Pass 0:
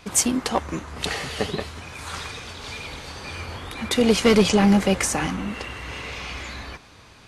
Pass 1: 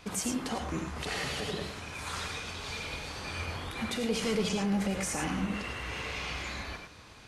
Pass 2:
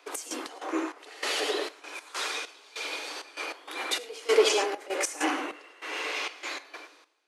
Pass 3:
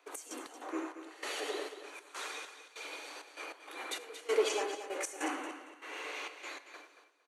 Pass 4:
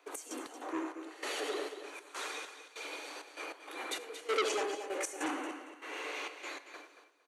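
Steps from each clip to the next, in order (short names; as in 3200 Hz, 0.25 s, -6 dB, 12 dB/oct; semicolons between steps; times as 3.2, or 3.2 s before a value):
limiter -20.5 dBFS, peak gain reduction 11.5 dB; non-linear reverb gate 0.13 s rising, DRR 4 dB; gain -4.5 dB
steep high-pass 290 Hz 96 dB/oct; step gate "x.x.xx..xx" 98 bpm -12 dB; three-band expander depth 70%; gain +6 dB
bell 3600 Hz -3.5 dB 1.1 oct; notch 5100 Hz, Q 7.8; feedback echo 0.229 s, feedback 22%, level -11 dB; gain -8 dB
low shelf 380 Hz +5 dB; core saturation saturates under 2400 Hz; gain +1 dB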